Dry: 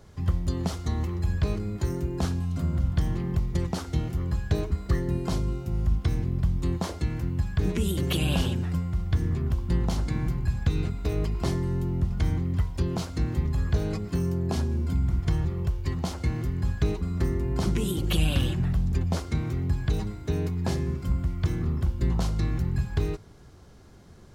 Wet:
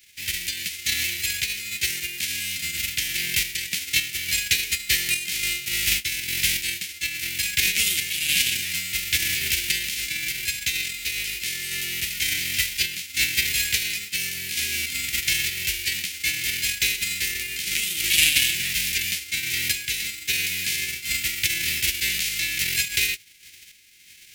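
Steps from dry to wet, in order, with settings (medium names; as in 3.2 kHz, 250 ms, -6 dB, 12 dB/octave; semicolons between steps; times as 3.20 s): formants flattened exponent 0.3; high-order bell 760 Hz -12.5 dB; random-step tremolo; resonant high shelf 1.6 kHz +12.5 dB, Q 3; trim -9.5 dB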